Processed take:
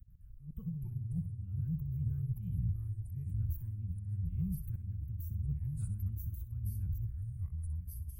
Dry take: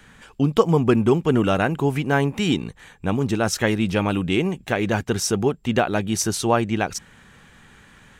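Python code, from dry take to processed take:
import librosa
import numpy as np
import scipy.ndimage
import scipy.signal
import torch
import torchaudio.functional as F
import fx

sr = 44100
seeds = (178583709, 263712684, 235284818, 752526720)

p1 = scipy.signal.sosfilt(scipy.signal.cheby2(4, 50, [300.0, 9700.0], 'bandstop', fs=sr, output='sos'), x)
p2 = fx.peak_eq(p1, sr, hz=81.0, db=2.5, octaves=0.26)
p3 = fx.over_compress(p2, sr, threshold_db=-38.0, ratio=-1.0)
p4 = fx.auto_swell(p3, sr, attack_ms=159.0)
p5 = fx.echo_pitch(p4, sr, ms=105, semitones=-4, count=2, db_per_echo=-3.0)
y = p5 + fx.room_flutter(p5, sr, wall_m=10.8, rt60_s=0.28, dry=0)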